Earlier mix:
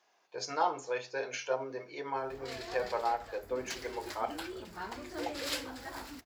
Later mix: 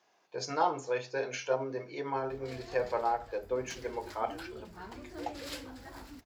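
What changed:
background -7.0 dB; master: add bass shelf 300 Hz +10 dB

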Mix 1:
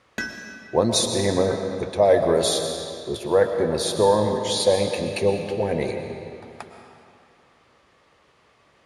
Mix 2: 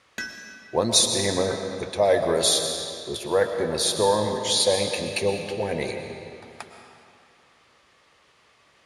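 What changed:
background -4.0 dB; master: add tilt shelf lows -4.5 dB, about 1.4 kHz

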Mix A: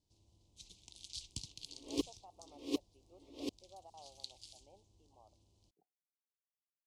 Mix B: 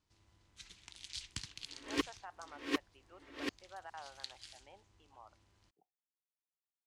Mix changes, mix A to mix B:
speech: remove distance through air 490 m; master: remove Butterworth band-stop 1.6 kHz, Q 0.58

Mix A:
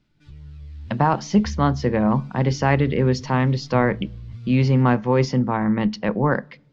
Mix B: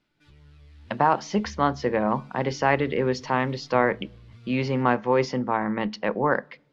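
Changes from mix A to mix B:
background: add peaking EQ 11 kHz +11 dB 0.48 oct; master: add tone controls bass -13 dB, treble -5 dB

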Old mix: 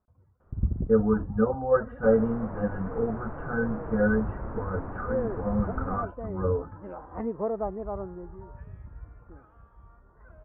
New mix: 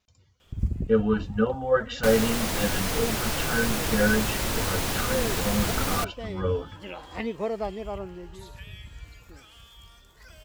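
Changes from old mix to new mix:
second sound +7.5 dB; master: remove steep low-pass 1.4 kHz 36 dB/octave

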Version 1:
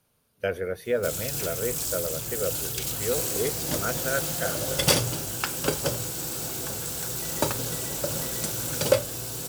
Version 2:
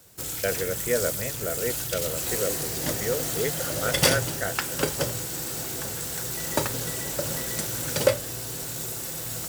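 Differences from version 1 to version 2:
background: entry -0.85 s; master: add peaking EQ 1.9 kHz +7 dB 0.28 oct

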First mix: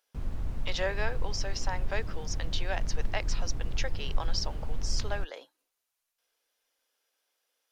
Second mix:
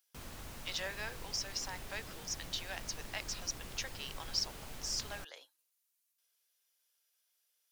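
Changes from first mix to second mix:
speech -10.0 dB; master: add tilt EQ +4 dB/octave

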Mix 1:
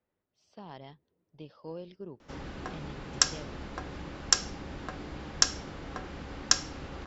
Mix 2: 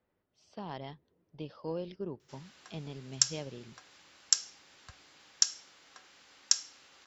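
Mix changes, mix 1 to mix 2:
speech +4.5 dB; background: add differentiator

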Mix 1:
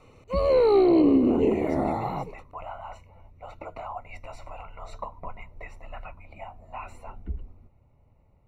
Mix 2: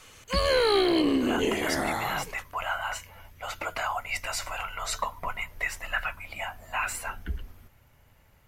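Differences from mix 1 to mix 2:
background -6.0 dB; master: remove boxcar filter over 27 samples

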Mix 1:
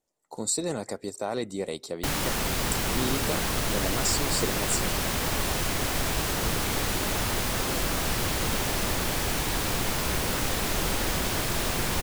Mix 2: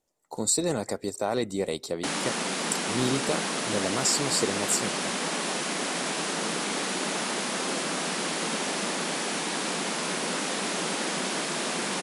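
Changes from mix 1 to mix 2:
speech +3.0 dB; background: add brick-wall FIR band-pass 160–11000 Hz

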